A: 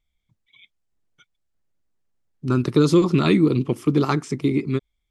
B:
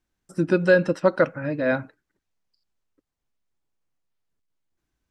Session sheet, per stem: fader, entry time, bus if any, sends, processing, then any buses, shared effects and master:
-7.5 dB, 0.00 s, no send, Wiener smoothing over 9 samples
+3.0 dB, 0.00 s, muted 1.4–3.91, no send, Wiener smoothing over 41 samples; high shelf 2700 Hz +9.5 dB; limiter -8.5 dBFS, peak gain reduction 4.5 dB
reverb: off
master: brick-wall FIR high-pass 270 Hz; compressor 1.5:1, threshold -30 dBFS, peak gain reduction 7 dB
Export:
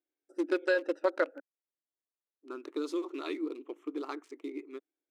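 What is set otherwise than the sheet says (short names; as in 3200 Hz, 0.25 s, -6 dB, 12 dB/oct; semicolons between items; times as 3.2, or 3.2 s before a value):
stem A -7.5 dB -> -16.0 dB; stem B +3.0 dB -> -4.0 dB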